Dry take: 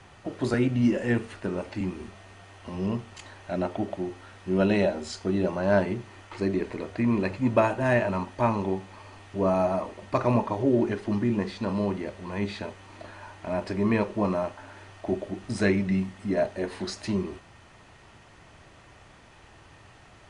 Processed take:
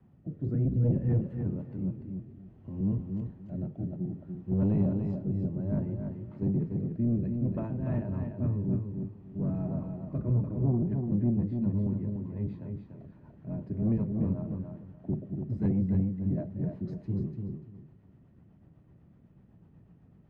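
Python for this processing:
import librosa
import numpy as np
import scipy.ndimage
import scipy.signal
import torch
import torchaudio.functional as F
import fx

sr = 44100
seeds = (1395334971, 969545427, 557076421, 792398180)

y = fx.octave_divider(x, sr, octaves=1, level_db=3.0)
y = fx.bandpass_q(y, sr, hz=170.0, q=1.7)
y = fx.fold_sine(y, sr, drive_db=5, ceiling_db=-12.5)
y = fx.rotary_switch(y, sr, hz=0.6, then_hz=8.0, switch_at_s=10.37)
y = fx.echo_feedback(y, sr, ms=292, feedback_pct=22, wet_db=-5.5)
y = F.gain(torch.from_numpy(y), -8.5).numpy()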